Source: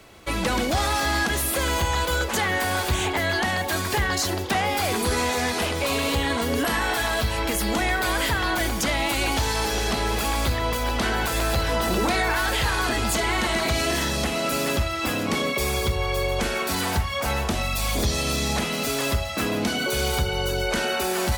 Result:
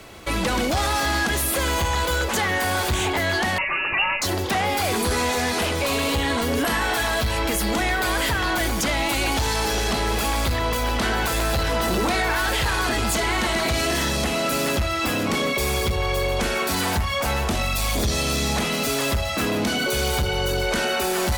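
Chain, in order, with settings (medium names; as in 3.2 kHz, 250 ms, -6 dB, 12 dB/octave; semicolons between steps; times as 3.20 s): in parallel at -0.5 dB: peak limiter -24 dBFS, peak gain reduction 10.5 dB; on the sum: sine folder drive 3 dB, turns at -11 dBFS; 3.58–4.22 s: frequency inversion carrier 2.8 kHz; trim -6.5 dB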